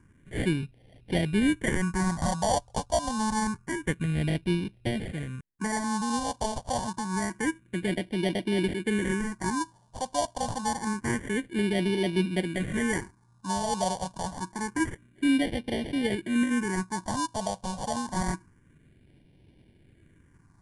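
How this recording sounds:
aliases and images of a low sample rate 1,300 Hz, jitter 0%
phaser sweep stages 4, 0.27 Hz, lowest notch 330–1,200 Hz
MP3

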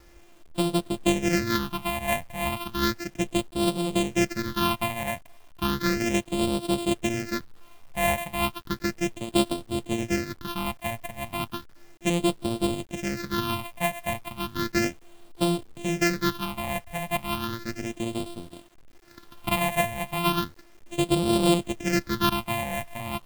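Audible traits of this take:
a buzz of ramps at a fixed pitch in blocks of 128 samples
phaser sweep stages 6, 0.34 Hz, lowest notch 350–1,800 Hz
a quantiser's noise floor 10 bits, dither none

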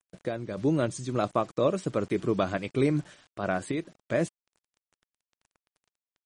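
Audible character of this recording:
a quantiser's noise floor 8 bits, dither none
sample-and-hold tremolo
MP3

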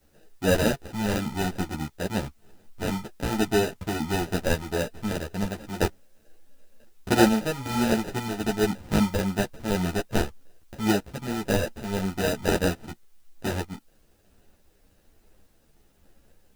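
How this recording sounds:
aliases and images of a low sample rate 1,100 Hz, jitter 0%
tremolo saw up 1.1 Hz, depth 40%
a quantiser's noise floor 12 bits, dither triangular
a shimmering, thickened sound

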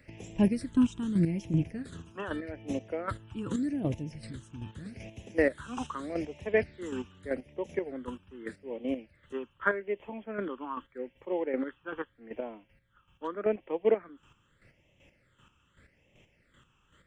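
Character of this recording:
phaser sweep stages 8, 0.82 Hz, lowest notch 590–1,400 Hz
chopped level 2.6 Hz, depth 60%, duty 25%

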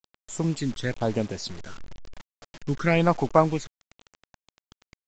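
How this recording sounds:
phaser sweep stages 12, 1 Hz, lowest notch 730–4,400 Hz
a quantiser's noise floor 8 bits, dither none
mu-law

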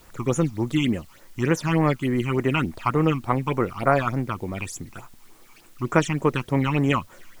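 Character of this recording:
phaser sweep stages 8, 3.4 Hz, lowest notch 490–4,600 Hz
a quantiser's noise floor 10 bits, dither triangular

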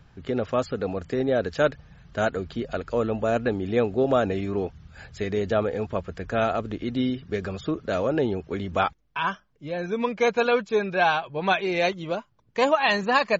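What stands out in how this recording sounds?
background noise floor −62 dBFS
spectral slope −4.0 dB per octave

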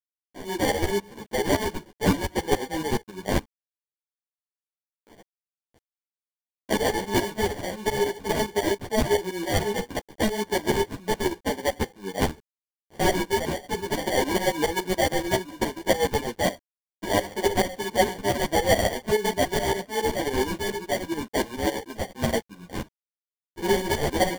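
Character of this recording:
aliases and images of a low sample rate 1,300 Hz, jitter 0%
tremolo saw up 7.1 Hz, depth 85%
a quantiser's noise floor 10 bits, dither none
a shimmering, thickened sound

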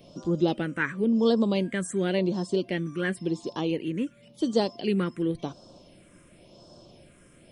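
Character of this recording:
phaser sweep stages 4, 0.93 Hz, lowest notch 760–2,100 Hz

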